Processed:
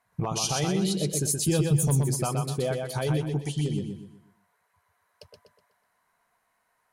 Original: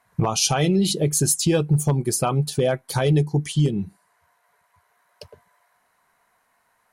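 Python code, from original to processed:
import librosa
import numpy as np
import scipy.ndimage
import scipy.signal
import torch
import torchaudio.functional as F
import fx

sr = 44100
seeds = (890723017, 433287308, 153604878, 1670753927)

y = fx.bass_treble(x, sr, bass_db=7, treble_db=9, at=(1.48, 2.05))
y = fx.echo_feedback(y, sr, ms=124, feedback_pct=37, wet_db=-4.0)
y = y * librosa.db_to_amplitude(-8.0)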